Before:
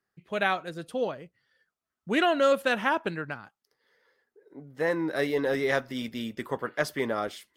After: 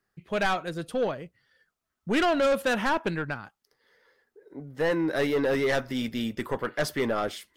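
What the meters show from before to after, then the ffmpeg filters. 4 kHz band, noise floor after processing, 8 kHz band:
+1.0 dB, -83 dBFS, +4.0 dB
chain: -af "asoftclip=type=tanh:threshold=-23.5dB,lowshelf=f=66:g=11,volume=4dB"

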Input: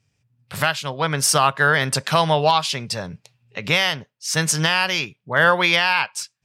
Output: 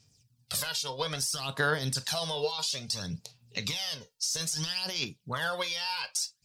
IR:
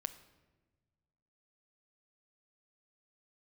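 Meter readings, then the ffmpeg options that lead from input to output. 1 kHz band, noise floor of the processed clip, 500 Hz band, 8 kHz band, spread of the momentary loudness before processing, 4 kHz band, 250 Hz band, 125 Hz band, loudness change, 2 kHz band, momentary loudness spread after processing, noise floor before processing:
-17.0 dB, -72 dBFS, -13.0 dB, -8.0 dB, 12 LU, -8.5 dB, -13.0 dB, -12.0 dB, -12.0 dB, -16.0 dB, 5 LU, -73 dBFS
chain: -filter_complex "[0:a]highshelf=f=3.2k:t=q:w=1.5:g=13,alimiter=limit=-10dB:level=0:latency=1:release=10,acompressor=threshold=-25dB:ratio=6,aphaser=in_gain=1:out_gain=1:delay=2.2:decay=0.63:speed=0.6:type=sinusoidal[a];[1:a]atrim=start_sample=2205,atrim=end_sample=3969,asetrate=70560,aresample=44100[b];[a][b]afir=irnorm=-1:irlink=0"

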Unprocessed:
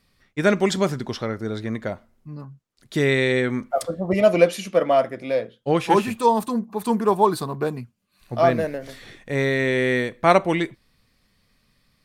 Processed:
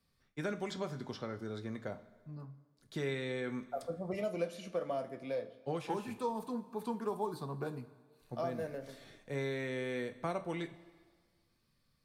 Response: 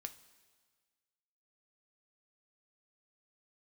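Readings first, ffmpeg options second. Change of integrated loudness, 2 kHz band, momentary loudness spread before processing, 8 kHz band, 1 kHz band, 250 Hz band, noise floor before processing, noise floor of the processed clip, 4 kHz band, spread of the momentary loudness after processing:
-18.0 dB, -19.0 dB, 14 LU, -19.0 dB, -19.5 dB, -16.5 dB, -66 dBFS, -76 dBFS, -17.0 dB, 12 LU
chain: -filter_complex "[0:a]equalizer=f=2.5k:w=1.5:g=-4,bandreject=f=1.9k:w=17,acrossover=split=96|550|5100[a][b][c][d];[a]acompressor=threshold=-55dB:ratio=4[e];[b]acompressor=threshold=-26dB:ratio=4[f];[c]acompressor=threshold=-28dB:ratio=4[g];[d]acompressor=threshold=-50dB:ratio=4[h];[e][f][g][h]amix=inputs=4:normalize=0[i];[1:a]atrim=start_sample=2205[j];[i][j]afir=irnorm=-1:irlink=0,volume=-7.5dB"

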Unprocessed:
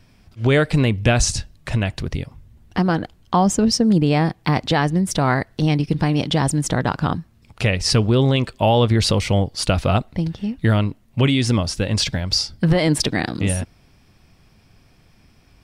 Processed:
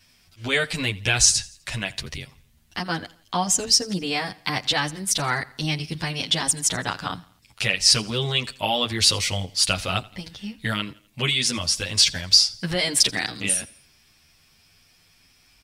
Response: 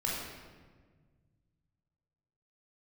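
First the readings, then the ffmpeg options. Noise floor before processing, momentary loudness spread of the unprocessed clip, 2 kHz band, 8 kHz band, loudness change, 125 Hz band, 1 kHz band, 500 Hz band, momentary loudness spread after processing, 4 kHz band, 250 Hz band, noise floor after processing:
-55 dBFS, 8 LU, 0.0 dB, +5.5 dB, -2.0 dB, -12.5 dB, -6.0 dB, -10.0 dB, 16 LU, +4.5 dB, -12.5 dB, -59 dBFS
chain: -filter_complex "[0:a]tiltshelf=f=1.4k:g=-9.5,asplit=2[a][b];[b]aecho=0:1:84|168|252:0.0794|0.0365|0.0168[c];[a][c]amix=inputs=2:normalize=0,asplit=2[d][e];[e]adelay=9.5,afreqshift=0.34[f];[d][f]amix=inputs=2:normalize=1"

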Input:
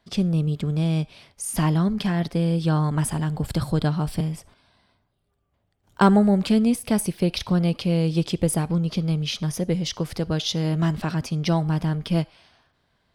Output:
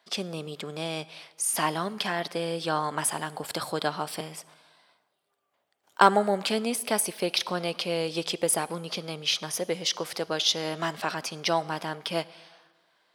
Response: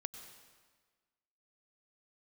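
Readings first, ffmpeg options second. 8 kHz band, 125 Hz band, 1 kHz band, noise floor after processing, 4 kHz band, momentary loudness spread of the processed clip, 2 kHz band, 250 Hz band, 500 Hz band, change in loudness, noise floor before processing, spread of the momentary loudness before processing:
+3.0 dB, -18.0 dB, +2.5 dB, -75 dBFS, +3.0 dB, 9 LU, +3.0 dB, -13.0 dB, -1.0 dB, -5.0 dB, -71 dBFS, 7 LU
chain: -filter_complex "[0:a]highpass=550,asplit=2[a][b];[1:a]atrim=start_sample=2205[c];[b][c]afir=irnorm=-1:irlink=0,volume=-11dB[d];[a][d]amix=inputs=2:normalize=0,volume=1.5dB"

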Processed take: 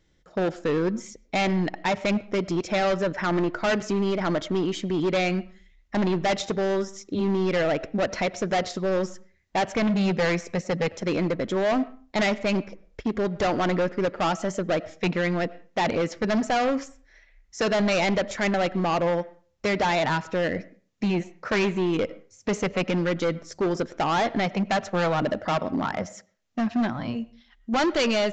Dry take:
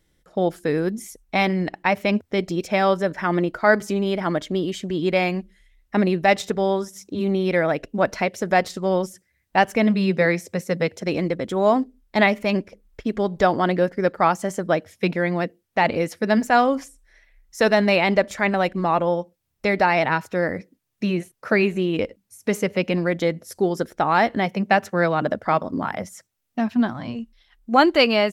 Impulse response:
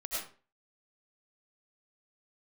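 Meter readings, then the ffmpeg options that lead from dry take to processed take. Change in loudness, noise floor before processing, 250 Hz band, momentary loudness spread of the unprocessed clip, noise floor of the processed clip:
-4.0 dB, -70 dBFS, -3.0 dB, 9 LU, -63 dBFS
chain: -filter_complex "[0:a]volume=20.5dB,asoftclip=hard,volume=-20.5dB,asplit=2[a][b];[1:a]atrim=start_sample=2205,lowpass=3k[c];[b][c]afir=irnorm=-1:irlink=0,volume=-20.5dB[d];[a][d]amix=inputs=2:normalize=0,aresample=16000,aresample=44100"

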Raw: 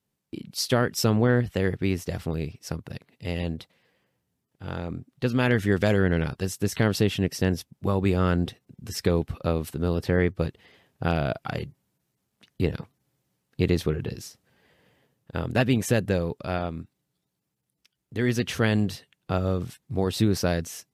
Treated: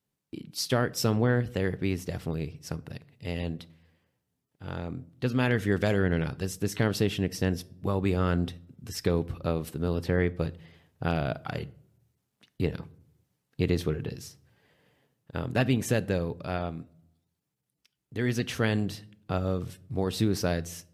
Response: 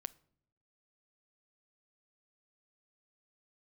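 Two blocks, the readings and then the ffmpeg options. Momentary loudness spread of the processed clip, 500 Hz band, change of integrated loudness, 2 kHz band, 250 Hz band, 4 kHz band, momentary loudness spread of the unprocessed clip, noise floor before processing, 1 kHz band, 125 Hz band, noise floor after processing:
14 LU, -3.5 dB, -3.5 dB, -3.5 dB, -3.5 dB, -3.5 dB, 14 LU, -80 dBFS, -3.0 dB, -3.0 dB, -82 dBFS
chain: -filter_complex "[1:a]atrim=start_sample=2205[a];[0:a][a]afir=irnorm=-1:irlink=0"

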